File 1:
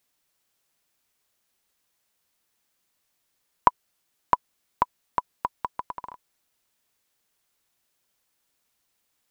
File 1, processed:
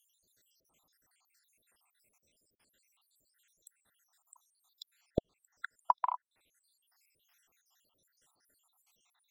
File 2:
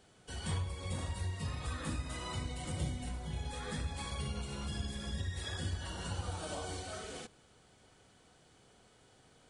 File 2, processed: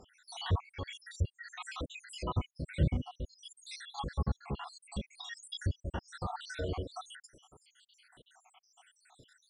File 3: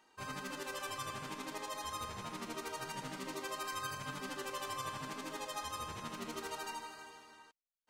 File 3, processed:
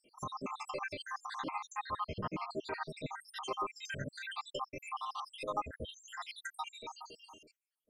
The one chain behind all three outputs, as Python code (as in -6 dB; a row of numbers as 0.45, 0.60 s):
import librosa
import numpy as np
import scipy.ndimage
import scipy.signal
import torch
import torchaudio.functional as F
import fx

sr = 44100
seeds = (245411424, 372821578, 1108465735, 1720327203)

y = fx.spec_dropout(x, sr, seeds[0], share_pct=82)
y = fx.env_lowpass_down(y, sr, base_hz=2100.0, full_db=-42.5)
y = F.gain(torch.from_numpy(y), 9.0).numpy()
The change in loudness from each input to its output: -8.0, +1.0, +0.5 LU